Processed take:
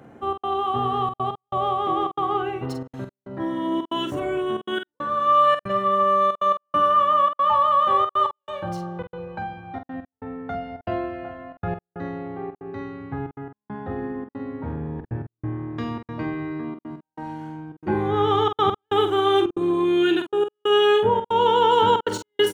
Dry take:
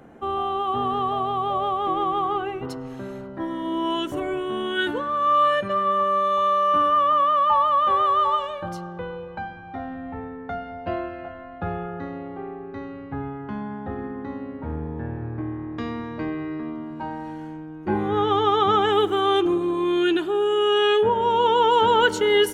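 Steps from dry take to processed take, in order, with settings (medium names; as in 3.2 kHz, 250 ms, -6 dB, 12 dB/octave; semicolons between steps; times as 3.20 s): median filter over 3 samples; high-pass 51 Hz; peaking EQ 120 Hz +7.5 dB 0.33 oct; trance gate "xxx.xxxxxx.x..xx" 138 bpm -60 dB; doubling 46 ms -7.5 dB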